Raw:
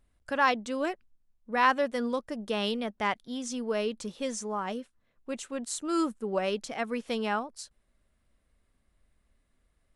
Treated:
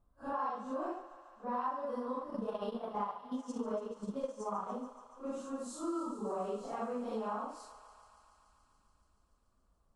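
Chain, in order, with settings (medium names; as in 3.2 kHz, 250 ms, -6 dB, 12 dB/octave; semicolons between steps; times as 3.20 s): phase randomisation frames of 200 ms; resonant high shelf 1.5 kHz -10.5 dB, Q 3; 2.14–4.71 s: transient shaper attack +7 dB, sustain -10 dB; compression 5:1, threshold -33 dBFS, peak gain reduction 17 dB; thinning echo 143 ms, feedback 83%, high-pass 510 Hz, level -13 dB; trim -2 dB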